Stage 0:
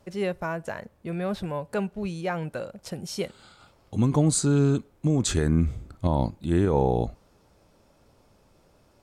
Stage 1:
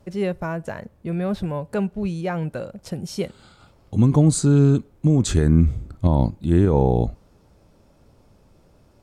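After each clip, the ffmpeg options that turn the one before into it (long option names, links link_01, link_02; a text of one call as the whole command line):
ffmpeg -i in.wav -af "lowshelf=frequency=370:gain=8" out.wav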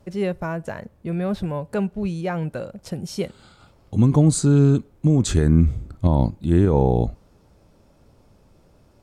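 ffmpeg -i in.wav -af anull out.wav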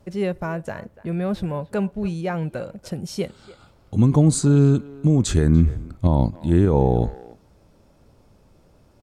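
ffmpeg -i in.wav -filter_complex "[0:a]asplit=2[link_01][link_02];[link_02]adelay=290,highpass=300,lowpass=3400,asoftclip=type=hard:threshold=-14dB,volume=-18dB[link_03];[link_01][link_03]amix=inputs=2:normalize=0" out.wav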